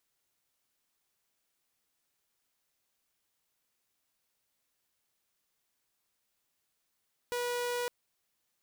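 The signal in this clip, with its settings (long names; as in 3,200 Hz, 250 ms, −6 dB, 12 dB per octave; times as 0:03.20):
tone saw 486 Hz −29 dBFS 0.56 s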